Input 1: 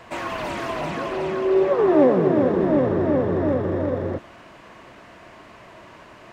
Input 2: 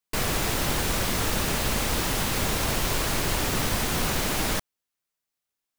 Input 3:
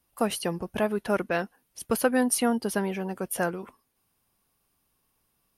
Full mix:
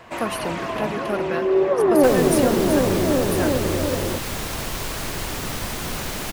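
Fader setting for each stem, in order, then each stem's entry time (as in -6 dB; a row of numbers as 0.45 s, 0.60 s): 0.0 dB, -2.5 dB, -1.0 dB; 0.00 s, 1.90 s, 0.00 s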